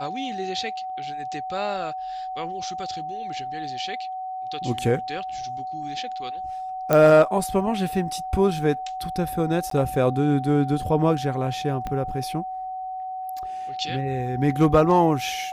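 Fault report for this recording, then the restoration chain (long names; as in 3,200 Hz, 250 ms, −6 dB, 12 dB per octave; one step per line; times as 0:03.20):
whistle 750 Hz −29 dBFS
0:06.93: click −6 dBFS
0:09.70–0:09.71: drop-out 13 ms
0:11.87: click −17 dBFS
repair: click removal
notch filter 750 Hz, Q 30
repair the gap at 0:09.70, 13 ms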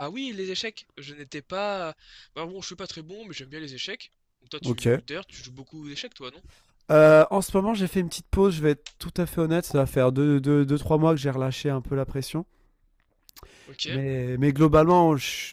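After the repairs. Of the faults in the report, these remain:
0:11.87: click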